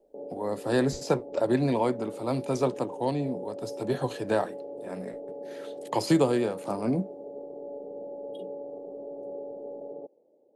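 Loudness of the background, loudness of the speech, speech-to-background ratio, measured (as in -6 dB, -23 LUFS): -40.5 LUFS, -28.5 LUFS, 12.0 dB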